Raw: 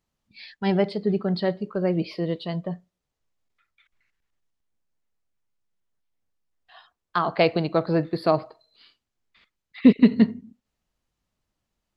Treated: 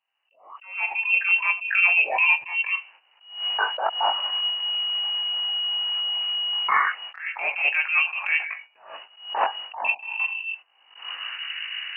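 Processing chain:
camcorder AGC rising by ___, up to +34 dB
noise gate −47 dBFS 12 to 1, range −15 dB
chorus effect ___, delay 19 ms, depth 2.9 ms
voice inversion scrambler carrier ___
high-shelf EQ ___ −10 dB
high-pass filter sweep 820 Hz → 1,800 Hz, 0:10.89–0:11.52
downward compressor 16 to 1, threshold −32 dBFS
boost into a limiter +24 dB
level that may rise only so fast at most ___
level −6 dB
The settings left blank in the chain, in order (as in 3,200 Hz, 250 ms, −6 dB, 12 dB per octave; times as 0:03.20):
42 dB per second, 0.34 Hz, 2,900 Hz, 2,200 Hz, 120 dB per second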